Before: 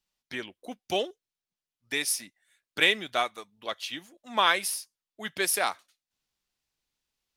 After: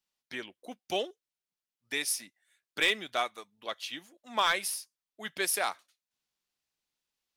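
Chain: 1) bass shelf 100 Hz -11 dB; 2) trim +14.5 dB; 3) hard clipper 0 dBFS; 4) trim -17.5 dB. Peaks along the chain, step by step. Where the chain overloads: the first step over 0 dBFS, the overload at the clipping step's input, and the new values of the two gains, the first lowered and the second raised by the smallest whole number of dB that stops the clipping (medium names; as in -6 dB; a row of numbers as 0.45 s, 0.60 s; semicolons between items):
-7.0 dBFS, +7.5 dBFS, 0.0 dBFS, -17.5 dBFS; step 2, 7.5 dB; step 2 +6.5 dB, step 4 -9.5 dB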